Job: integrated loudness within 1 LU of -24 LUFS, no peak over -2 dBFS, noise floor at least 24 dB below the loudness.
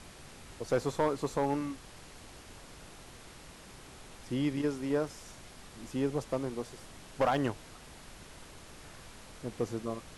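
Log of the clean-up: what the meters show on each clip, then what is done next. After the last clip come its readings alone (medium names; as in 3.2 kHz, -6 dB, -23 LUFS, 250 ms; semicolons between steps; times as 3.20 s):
clipped samples 0.2%; clipping level -21.0 dBFS; noise floor -52 dBFS; noise floor target -58 dBFS; loudness -34.0 LUFS; peak level -21.0 dBFS; loudness target -24.0 LUFS
-> clip repair -21 dBFS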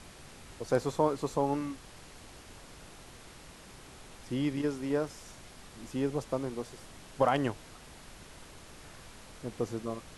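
clipped samples 0.0%; noise floor -52 dBFS; noise floor target -57 dBFS
-> noise print and reduce 6 dB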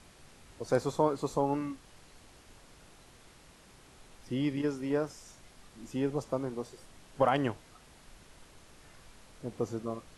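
noise floor -58 dBFS; loudness -33.0 LUFS; peak level -13.0 dBFS; loudness target -24.0 LUFS
-> trim +9 dB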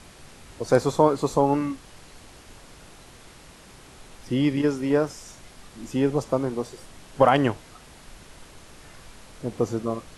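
loudness -24.0 LUFS; peak level -4.0 dBFS; noise floor -49 dBFS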